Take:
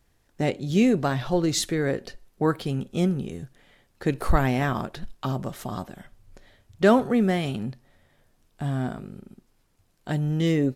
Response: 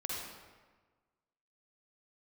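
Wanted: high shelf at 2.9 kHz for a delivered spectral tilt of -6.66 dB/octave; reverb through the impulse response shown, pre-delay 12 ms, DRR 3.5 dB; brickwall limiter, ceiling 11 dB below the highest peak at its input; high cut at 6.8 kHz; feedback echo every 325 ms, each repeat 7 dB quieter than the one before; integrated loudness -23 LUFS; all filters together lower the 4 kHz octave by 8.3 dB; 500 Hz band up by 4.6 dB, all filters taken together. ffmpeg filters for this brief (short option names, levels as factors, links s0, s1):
-filter_complex "[0:a]lowpass=6800,equalizer=f=500:t=o:g=6,highshelf=f=2900:g=-8.5,equalizer=f=4000:t=o:g=-3.5,alimiter=limit=0.188:level=0:latency=1,aecho=1:1:325|650|975|1300|1625:0.447|0.201|0.0905|0.0407|0.0183,asplit=2[s0][s1];[1:a]atrim=start_sample=2205,adelay=12[s2];[s1][s2]afir=irnorm=-1:irlink=0,volume=0.501[s3];[s0][s3]amix=inputs=2:normalize=0,volume=1.19"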